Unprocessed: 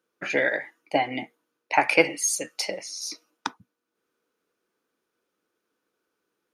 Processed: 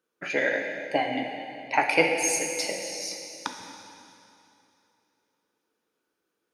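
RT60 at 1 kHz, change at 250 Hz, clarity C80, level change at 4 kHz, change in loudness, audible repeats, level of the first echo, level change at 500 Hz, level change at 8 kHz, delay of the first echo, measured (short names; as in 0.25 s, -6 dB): 2.8 s, -0.5 dB, 5.0 dB, -0.5 dB, -1.5 dB, none, none, -0.5 dB, -0.5 dB, none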